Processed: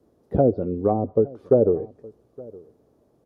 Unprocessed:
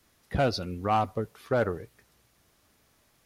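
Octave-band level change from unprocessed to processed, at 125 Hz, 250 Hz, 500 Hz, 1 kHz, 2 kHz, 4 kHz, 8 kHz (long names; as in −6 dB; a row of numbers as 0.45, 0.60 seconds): +5.0 dB, +9.5 dB, +10.0 dB, −2.0 dB, below −15 dB, below −30 dB, can't be measured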